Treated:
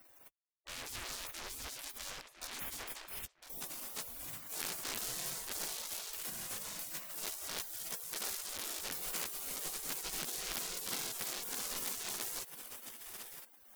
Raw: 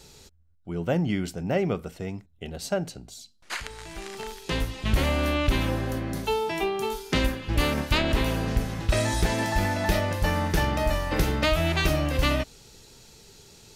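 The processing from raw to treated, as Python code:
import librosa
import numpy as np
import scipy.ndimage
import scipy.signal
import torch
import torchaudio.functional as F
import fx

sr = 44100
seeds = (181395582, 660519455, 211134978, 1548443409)

y = fx.fuzz(x, sr, gain_db=47.0, gate_db=-49.0)
y = fx.tone_stack(y, sr, knobs='5-5-5')
y = fx.echo_filtered(y, sr, ms=1006, feedback_pct=26, hz=2000.0, wet_db=-9.0)
y = fx.spec_gate(y, sr, threshold_db=-20, keep='weak')
y = fx.low_shelf(y, sr, hz=190.0, db=11.5)
y = y * 10.0 ** (-6.5 / 20.0)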